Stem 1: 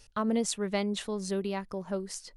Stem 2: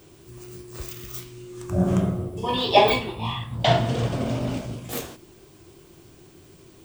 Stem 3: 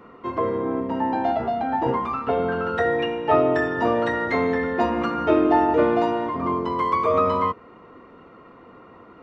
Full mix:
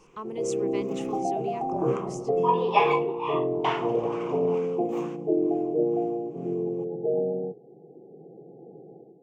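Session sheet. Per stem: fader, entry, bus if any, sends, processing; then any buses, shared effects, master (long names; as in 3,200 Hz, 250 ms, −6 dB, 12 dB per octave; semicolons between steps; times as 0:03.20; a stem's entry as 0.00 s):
−8.5 dB, 0.00 s, no send, no processing
+1.5 dB, 0.00 s, no send, LFO wah 2.2 Hz 560–1,500 Hz, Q 2.1
−12.5 dB, 0.00 s, no send, automatic gain control gain up to 13.5 dB; brick-wall band-pass 110–850 Hz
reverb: not used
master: EQ curve with evenly spaced ripples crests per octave 0.74, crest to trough 12 dB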